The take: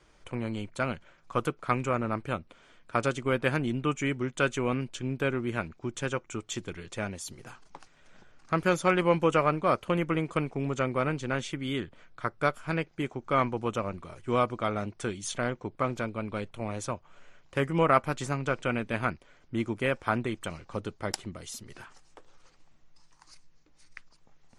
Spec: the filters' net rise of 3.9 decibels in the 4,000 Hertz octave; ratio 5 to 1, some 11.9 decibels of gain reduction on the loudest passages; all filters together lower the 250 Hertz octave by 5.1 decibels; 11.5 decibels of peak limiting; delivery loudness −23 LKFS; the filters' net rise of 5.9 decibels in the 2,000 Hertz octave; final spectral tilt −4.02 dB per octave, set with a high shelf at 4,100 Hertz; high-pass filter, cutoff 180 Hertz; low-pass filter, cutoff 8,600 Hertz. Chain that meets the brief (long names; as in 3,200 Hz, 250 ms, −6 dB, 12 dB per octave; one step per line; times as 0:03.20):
high-pass filter 180 Hz
low-pass filter 8,600 Hz
parametric band 250 Hz −5.5 dB
parametric band 2,000 Hz +8.5 dB
parametric band 4,000 Hz +6 dB
high-shelf EQ 4,100 Hz −8 dB
downward compressor 5 to 1, threshold −29 dBFS
level +15 dB
brickwall limiter −7.5 dBFS